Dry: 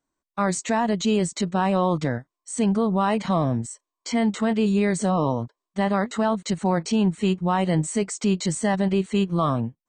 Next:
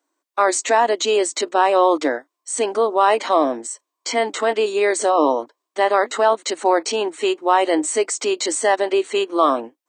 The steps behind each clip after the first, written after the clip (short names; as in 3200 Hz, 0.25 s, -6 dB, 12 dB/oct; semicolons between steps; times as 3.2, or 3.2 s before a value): elliptic high-pass 290 Hz, stop band 40 dB; gain +8.5 dB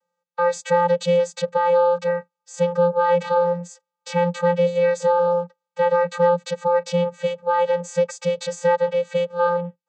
in parallel at +1 dB: limiter -13 dBFS, peak gain reduction 10 dB; on the sum: vocoder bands 16, square 174 Hz; gain -5 dB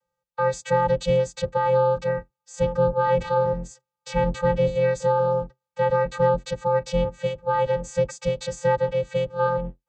octaver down 2 oct, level 0 dB; gain -3 dB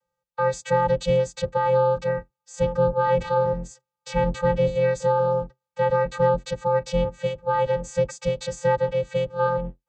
nothing audible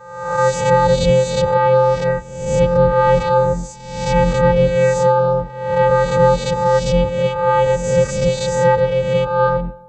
spectral swells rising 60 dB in 0.90 s; on a send at -21 dB: reverb RT60 1.0 s, pre-delay 77 ms; on the sum: gain +7 dB